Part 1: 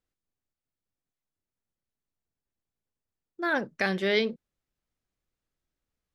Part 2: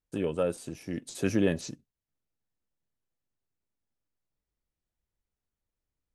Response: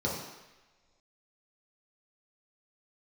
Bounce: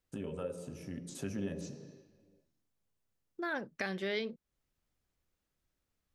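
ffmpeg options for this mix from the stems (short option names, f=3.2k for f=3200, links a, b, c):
-filter_complex "[0:a]volume=1.5dB[a];[1:a]volume=-3dB,asplit=2[b][c];[c]volume=-15dB[d];[2:a]atrim=start_sample=2205[e];[d][e]afir=irnorm=-1:irlink=0[f];[a][b][f]amix=inputs=3:normalize=0,acompressor=threshold=-43dB:ratio=2"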